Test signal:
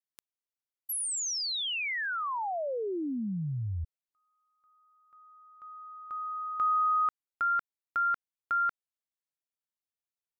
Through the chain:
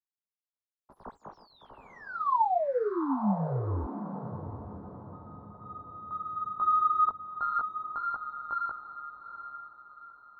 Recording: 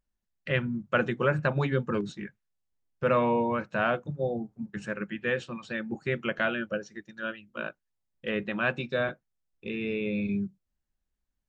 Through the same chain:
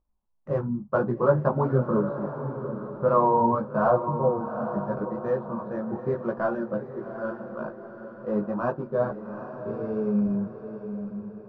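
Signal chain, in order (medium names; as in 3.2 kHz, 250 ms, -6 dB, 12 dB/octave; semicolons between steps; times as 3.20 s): median filter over 15 samples; distance through air 290 m; chorus voices 4, 0.97 Hz, delay 17 ms, depth 3 ms; resonant high shelf 1.5 kHz -13.5 dB, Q 3; echo that smears into a reverb 809 ms, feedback 43%, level -9 dB; trim +6 dB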